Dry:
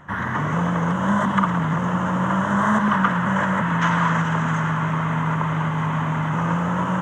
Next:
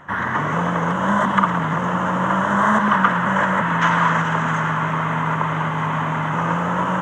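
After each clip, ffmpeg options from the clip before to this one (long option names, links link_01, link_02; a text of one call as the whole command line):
ffmpeg -i in.wav -af "bass=frequency=250:gain=-7,treble=frequency=4000:gain=-3,volume=4dB" out.wav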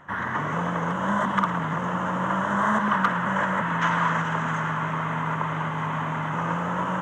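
ffmpeg -i in.wav -af "asoftclip=type=hard:threshold=-5dB,volume=-6dB" out.wav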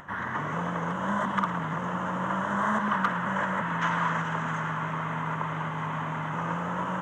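ffmpeg -i in.wav -af "acompressor=mode=upward:threshold=-37dB:ratio=2.5,volume=-4dB" out.wav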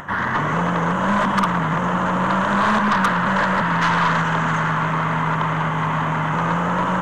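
ffmpeg -i in.wav -af "aeval=exprs='0.188*(cos(1*acos(clip(val(0)/0.188,-1,1)))-cos(1*PI/2))+0.0335*(cos(5*acos(clip(val(0)/0.188,-1,1)))-cos(5*PI/2))+0.00841*(cos(6*acos(clip(val(0)/0.188,-1,1)))-cos(6*PI/2))':channel_layout=same,volume=6dB" out.wav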